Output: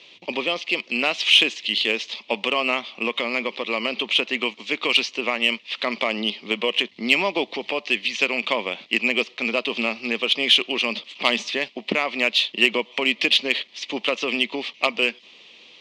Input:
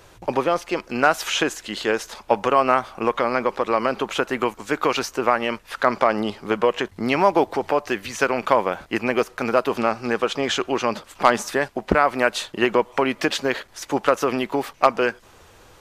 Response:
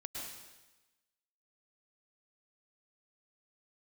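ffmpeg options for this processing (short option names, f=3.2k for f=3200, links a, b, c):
-af "highpass=f=180:w=0.5412,highpass=f=180:w=1.3066,equalizer=f=230:t=q:w=4:g=5,equalizer=f=810:t=q:w=4:g=-5,equalizer=f=1.5k:t=q:w=4:g=-9,lowpass=f=3.2k:w=0.5412,lowpass=f=3.2k:w=1.3066,aexciter=amount=8.4:drive=8.4:freq=2.3k,volume=-6dB"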